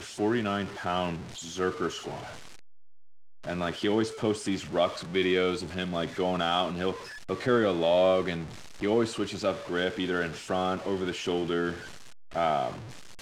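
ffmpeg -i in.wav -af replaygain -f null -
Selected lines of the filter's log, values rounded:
track_gain = +9.0 dB
track_peak = 0.190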